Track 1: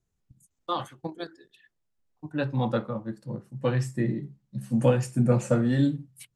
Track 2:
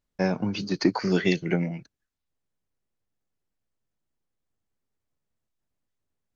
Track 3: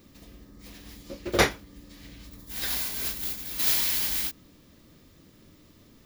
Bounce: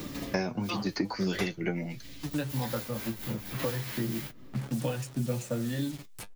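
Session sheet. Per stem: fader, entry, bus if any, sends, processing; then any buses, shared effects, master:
-7.0 dB, 0.00 s, no send, level-crossing sampler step -38.5 dBFS
+0.5 dB, 0.15 s, no send, dry
-7.5 dB, 0.00 s, no send, tremolo 4.3 Hz, depth 32%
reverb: off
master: flange 0.41 Hz, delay 6.5 ms, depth 3.9 ms, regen +49%; three-band squash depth 100%

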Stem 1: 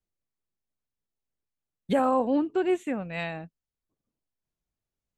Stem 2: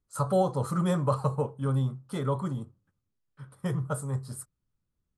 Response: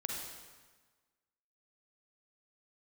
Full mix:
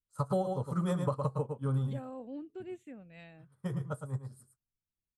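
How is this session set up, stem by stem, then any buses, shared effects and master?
-19.5 dB, 0.00 s, no send, no echo send, bell 980 Hz -8.5 dB 0.91 oct
+2.0 dB, 0.00 s, muted 1.99–2.6, no send, echo send -8 dB, upward expander 2.5:1, over -35 dBFS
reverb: off
echo: echo 0.111 s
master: low shelf 500 Hz +3.5 dB; compressor 10:1, threshold -27 dBFS, peak gain reduction 11 dB

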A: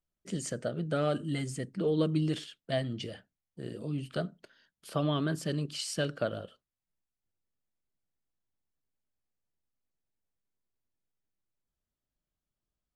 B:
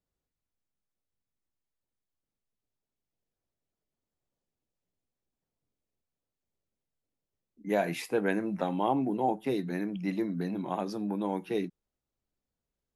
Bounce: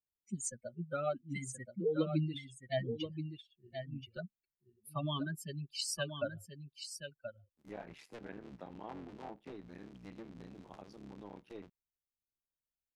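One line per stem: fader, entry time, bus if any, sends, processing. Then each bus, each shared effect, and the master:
-0.5 dB, 0.00 s, no send, echo send -8 dB, per-bin expansion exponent 3
-18.5 dB, 0.00 s, no send, no echo send, cycle switcher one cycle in 3, muted; treble ducked by the level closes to 2500 Hz, closed at -26 dBFS; low shelf 190 Hz +4.5 dB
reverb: off
echo: echo 1.028 s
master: high shelf 3900 Hz +6.5 dB

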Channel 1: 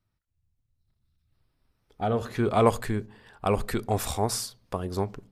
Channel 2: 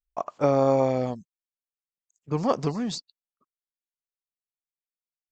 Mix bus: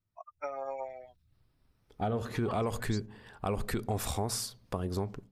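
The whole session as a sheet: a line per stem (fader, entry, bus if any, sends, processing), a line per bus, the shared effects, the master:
-9.5 dB, 0.00 s, no send, bell 130 Hz +3.5 dB 3 oct; limiter -16.5 dBFS, peak gain reduction 9.5 dB; AGC gain up to 9 dB
-2.5 dB, 0.00 s, no send, per-bin expansion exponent 3; HPF 970 Hz 12 dB/oct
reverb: off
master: compressor 2:1, threshold -32 dBFS, peak gain reduction 6 dB

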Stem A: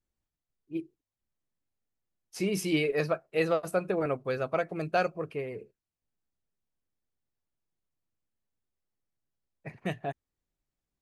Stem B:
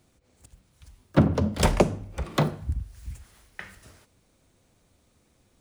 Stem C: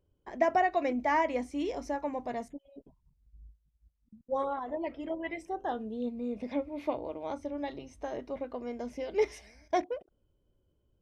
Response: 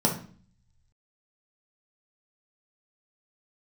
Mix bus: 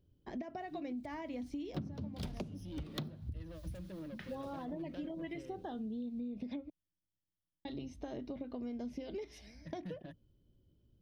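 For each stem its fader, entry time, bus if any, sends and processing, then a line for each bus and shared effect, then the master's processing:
-9.0 dB, 0.00 s, no send, ripple EQ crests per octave 1.2, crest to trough 16 dB; compressor 2:1, threshold -34 dBFS, peak gain reduction 10.5 dB; soft clip -32.5 dBFS, distortion -10 dB
-6.0 dB, 0.60 s, no send, dry
+1.5 dB, 0.00 s, muted 6.7–7.65, no send, compressor 6:1, threshold -35 dBFS, peak gain reduction 13.5 dB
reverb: off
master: graphic EQ 125/250/500/1000/2000/4000/8000 Hz +5/+5/-5/-7/-6/+6/-11 dB; compressor 10:1, threshold -38 dBFS, peak gain reduction 22.5 dB

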